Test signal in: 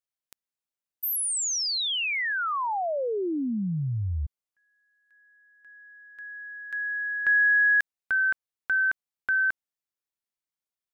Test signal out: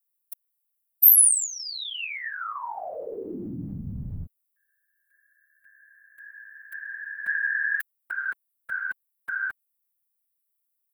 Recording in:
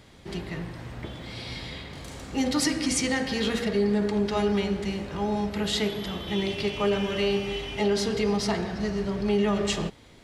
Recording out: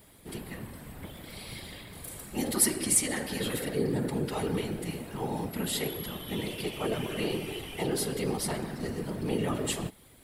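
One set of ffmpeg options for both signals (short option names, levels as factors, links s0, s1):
-af "aexciter=amount=9.4:drive=6.7:freq=8700,afftfilt=real='hypot(re,im)*cos(2*PI*random(0))':imag='hypot(re,im)*sin(2*PI*random(1))':win_size=512:overlap=0.75"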